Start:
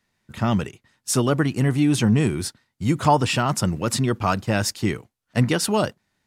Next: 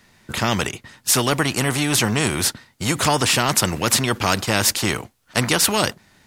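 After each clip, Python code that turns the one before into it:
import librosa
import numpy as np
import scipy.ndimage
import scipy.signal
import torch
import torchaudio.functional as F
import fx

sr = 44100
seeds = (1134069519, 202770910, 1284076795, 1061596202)

y = fx.spectral_comp(x, sr, ratio=2.0)
y = F.gain(torch.from_numpy(y), 3.5).numpy()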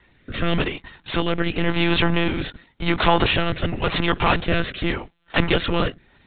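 y = fx.lpc_monotone(x, sr, seeds[0], pitch_hz=170.0, order=16)
y = fx.rotary(y, sr, hz=0.9)
y = F.gain(torch.from_numpy(y), 2.5).numpy()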